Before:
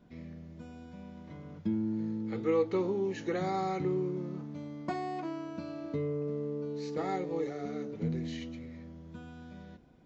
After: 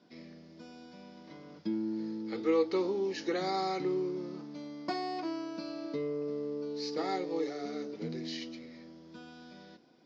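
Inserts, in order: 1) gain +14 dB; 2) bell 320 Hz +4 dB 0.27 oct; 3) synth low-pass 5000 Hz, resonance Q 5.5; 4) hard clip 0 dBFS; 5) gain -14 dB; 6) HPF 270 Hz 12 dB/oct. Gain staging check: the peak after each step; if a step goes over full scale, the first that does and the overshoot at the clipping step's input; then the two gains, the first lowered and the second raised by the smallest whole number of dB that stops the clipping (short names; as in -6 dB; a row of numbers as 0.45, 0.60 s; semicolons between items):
-4.5, -3.5, -3.5, -3.5, -17.5, -17.5 dBFS; no overload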